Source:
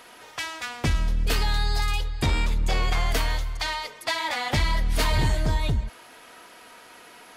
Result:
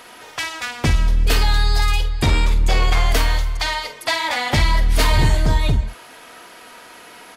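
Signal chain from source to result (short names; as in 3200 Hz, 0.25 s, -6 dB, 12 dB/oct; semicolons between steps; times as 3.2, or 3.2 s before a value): doubler 49 ms -10.5 dB; gain +6 dB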